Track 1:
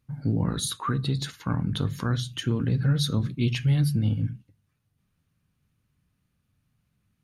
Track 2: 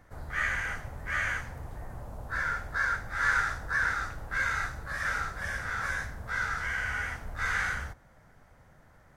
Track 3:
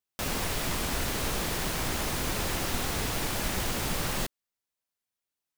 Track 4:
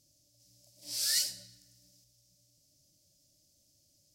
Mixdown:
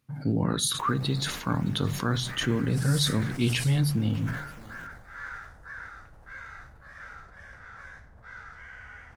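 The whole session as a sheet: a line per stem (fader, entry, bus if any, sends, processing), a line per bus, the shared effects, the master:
+2.5 dB, 0.00 s, no send, echo send -23 dB, high-pass 210 Hz 6 dB/octave
-12.5 dB, 1.95 s, no send, no echo send, low-pass 3 kHz 6 dB/octave
-19.5 dB, 0.60 s, no send, echo send -14 dB, decimation with a swept rate 13×, swing 60% 3.5 Hz
-16.0 dB, 1.85 s, no send, echo send -5 dB, peaking EQ 9.4 kHz +13 dB 0.81 oct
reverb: none
echo: delay 620 ms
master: decay stretcher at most 62 dB/s

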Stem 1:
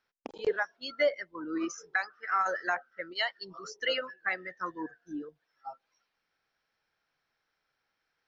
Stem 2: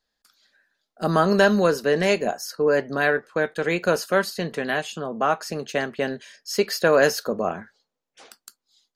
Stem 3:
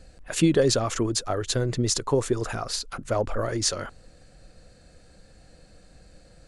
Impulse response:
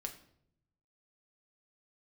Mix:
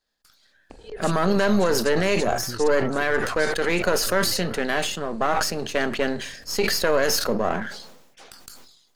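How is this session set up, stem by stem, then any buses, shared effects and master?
+1.0 dB, 0.45 s, send -12.5 dB, peak limiter -25.5 dBFS, peak gain reduction 8.5 dB; auto duck -13 dB, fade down 1.85 s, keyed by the second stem
+1.5 dB, 0.00 s, send -9.5 dB, partial rectifier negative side -7 dB; decay stretcher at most 60 dB/s
+0.5 dB, 0.70 s, no send, compression, threshold -34 dBFS, peak gain reduction 18 dB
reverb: on, RT60 0.70 s, pre-delay 5 ms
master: peak limiter -10 dBFS, peak gain reduction 7.5 dB

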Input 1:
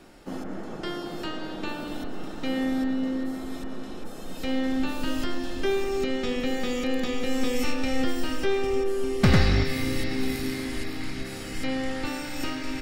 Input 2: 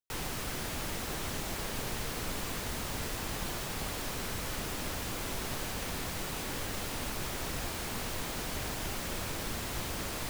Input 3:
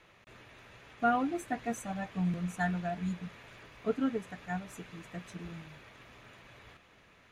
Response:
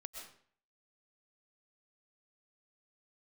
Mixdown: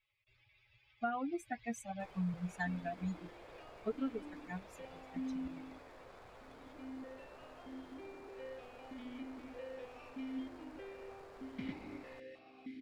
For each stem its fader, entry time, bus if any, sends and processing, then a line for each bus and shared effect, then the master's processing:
-13.0 dB, 2.35 s, send -11.5 dB, stepped vowel filter 3.2 Hz
-15.0 dB, 1.90 s, no send, median filter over 15 samples; resonant low shelf 350 Hz -9 dB, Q 1.5
+0.5 dB, 0.00 s, no send, expander on every frequency bin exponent 2; compression 6:1, threshold -34 dBFS, peak gain reduction 10 dB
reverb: on, RT60 0.55 s, pre-delay 85 ms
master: treble shelf 9.9 kHz -11 dB

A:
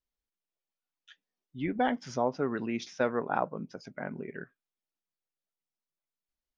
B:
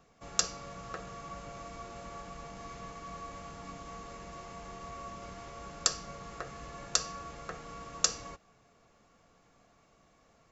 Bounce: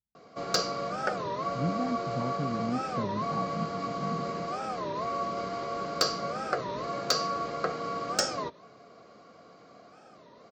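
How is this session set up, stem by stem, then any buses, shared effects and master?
-16.5 dB, 0.00 s, no send, resonant low shelf 260 Hz +13 dB, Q 1.5
-2.5 dB, 0.15 s, no send, peaking EQ 4.5 kHz +14.5 dB 0.38 oct; overdrive pedal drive 20 dB, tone 5.5 kHz, clips at -1.5 dBFS; comb of notches 880 Hz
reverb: none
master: high-pass 79 Hz; tilt shelf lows +9.5 dB, about 1.4 kHz; warped record 33 1/3 rpm, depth 250 cents

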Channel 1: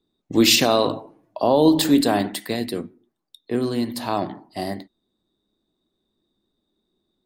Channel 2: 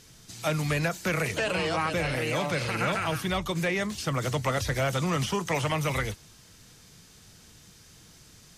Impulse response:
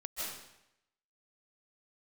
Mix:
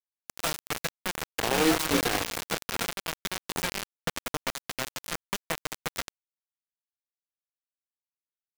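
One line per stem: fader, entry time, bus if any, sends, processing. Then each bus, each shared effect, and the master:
0.87 s -24 dB -> 1.19 s -13.5 dB -> 3.47 s -13.5 dB -> 4.22 s -24 dB, 0.00 s, no send, comb 2.5 ms, depth 99%
-5.5 dB, 0.00 s, no send, comb 4.3 ms, depth 88%; three bands compressed up and down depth 100%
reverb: none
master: bit crusher 4-bit

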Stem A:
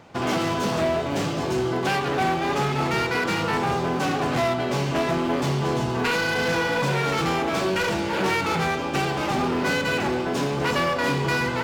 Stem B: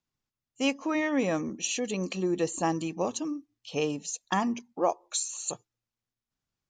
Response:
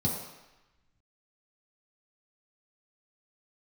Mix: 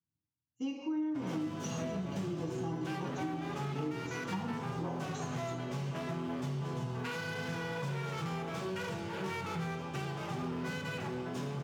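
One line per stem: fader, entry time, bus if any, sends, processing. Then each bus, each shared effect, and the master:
-14.5 dB, 1.00 s, send -17.5 dB, high-pass 82 Hz
0.0 dB, 0.00 s, send -3.5 dB, low-pass 5.3 kHz; feedback comb 310 Hz, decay 0.25 s, harmonics odd, mix 90%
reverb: on, RT60 1.0 s, pre-delay 3 ms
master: compression 6:1, threshold -33 dBFS, peak gain reduction 12 dB

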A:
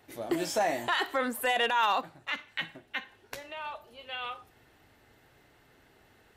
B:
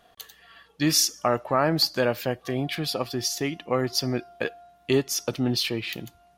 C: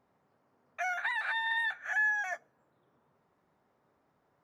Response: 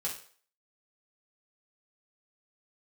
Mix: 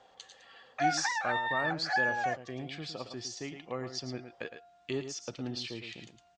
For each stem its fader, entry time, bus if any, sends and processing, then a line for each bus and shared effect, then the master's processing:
mute
-13.0 dB, 0.00 s, no send, echo send -9.5 dB, none
-1.5 dB, 0.00 s, no send, no echo send, reverb removal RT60 0.6 s; small resonant body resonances 520/770 Hz, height 17 dB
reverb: none
echo: delay 110 ms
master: steep low-pass 8.1 kHz 72 dB/octave; tape noise reduction on one side only encoder only

